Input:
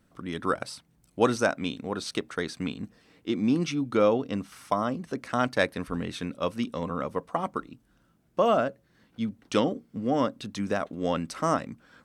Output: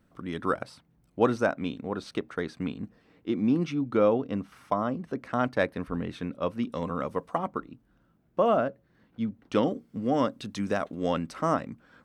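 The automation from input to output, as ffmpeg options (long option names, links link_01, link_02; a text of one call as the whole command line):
ffmpeg -i in.wav -af "asetnsamples=nb_out_samples=441:pad=0,asendcmd='0.62 equalizer g -13.5;6.72 equalizer g -2;7.38 equalizer g -13;9.63 equalizer g -1.5;11.18 equalizer g -8.5',equalizer=frequency=8600:width_type=o:width=2.5:gain=-6.5" out.wav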